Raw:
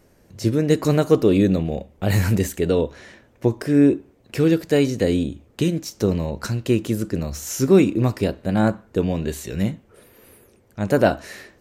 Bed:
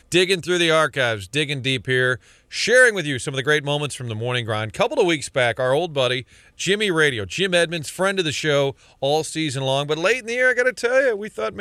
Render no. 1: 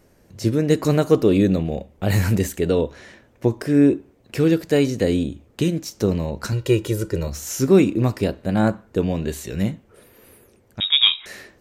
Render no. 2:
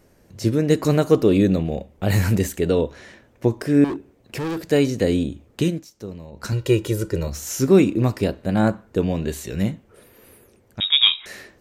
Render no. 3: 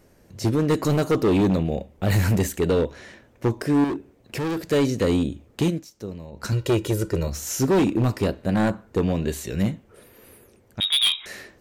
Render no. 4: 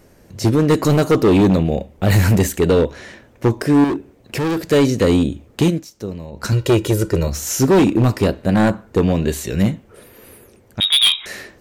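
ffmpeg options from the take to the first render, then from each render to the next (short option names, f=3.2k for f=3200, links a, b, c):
-filter_complex "[0:a]asettb=1/sr,asplit=3[a][b][c];[a]atrim=end=6.524[d];[b]atrim=start=6.52:end=7.28,asetpts=PTS-STARTPTS,afade=t=in:d=0.004:c=qsin,afade=t=out:st=0.756:d=0.004:c=qsin,aecho=1:1:2.1:0.81,atrim=end_sample=33516[e];[c]atrim=start=7.276[f];[d][e]acrossfade=d=0.004:c1=hsin:c2=qsin[g];[g][f]acrossfade=d=0.004:c1=qsin:c2=hsin,asettb=1/sr,asplit=3[h][i][j];[h]atrim=end=10.804[k];[i]atrim=start=10.8:end=11.26,asetpts=PTS-STARTPTS,afade=t=in:d=0.004:c=qsin,afade=t=out:st=0.456:d=0.004:c=qsin,lowpass=f=3.3k:t=q:w=0.5098,lowpass=f=3.3k:t=q:w=0.6013,lowpass=f=3.3k:t=q:w=0.9,lowpass=f=3.3k:t=q:w=2.563,afreqshift=-3900[l];[j]atrim=start=11.256[m];[k][l]acrossfade=d=0.004:c1=hsin:c2=qsin[n];[n][m]acrossfade=d=0.004:c1=qsin:c2=hsin"
-filter_complex "[0:a]asettb=1/sr,asplit=3[a][b][c];[a]atrim=end=3.844[d];[b]atrim=start=3.84:end=4.63,asetpts=PTS-STARTPTS,afade=t=in:d=0.004:c=qsin,afade=t=out:st=0.786:d=0.004:c=qsin,asoftclip=type=hard:threshold=-24dB[e];[c]atrim=start=4.626[f];[d][e]acrossfade=d=0.004:c1=hsin:c2=qsin[g];[g][f]acrossfade=d=0.004:c1=qsin:c2=hsin,asplit=3[h][i][j];[h]atrim=end=5.87,asetpts=PTS-STARTPTS,afade=t=out:st=5.67:d=0.2:silence=0.199526[k];[i]atrim=start=5.87:end=6.32,asetpts=PTS-STARTPTS,volume=-14dB[l];[j]atrim=start=6.32,asetpts=PTS-STARTPTS,afade=t=in:d=0.2:silence=0.199526[m];[k][l][m]concat=n=3:v=0:a=1"
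-af "asoftclip=type=hard:threshold=-15.5dB"
-af "volume=6.5dB"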